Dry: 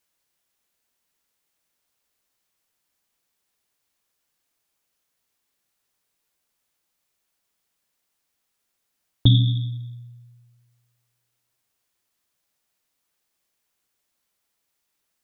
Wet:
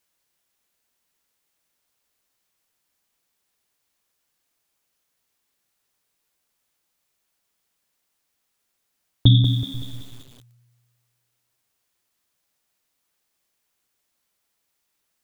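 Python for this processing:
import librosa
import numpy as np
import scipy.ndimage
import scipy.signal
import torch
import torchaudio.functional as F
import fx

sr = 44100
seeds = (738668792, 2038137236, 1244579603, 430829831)

y = fx.lpc_monotone(x, sr, seeds[0], pitch_hz=290.0, order=16, at=(9.74, 10.28))
y = fx.echo_crushed(y, sr, ms=189, feedback_pct=55, bits=7, wet_db=-8.5)
y = F.gain(torch.from_numpy(y), 1.5).numpy()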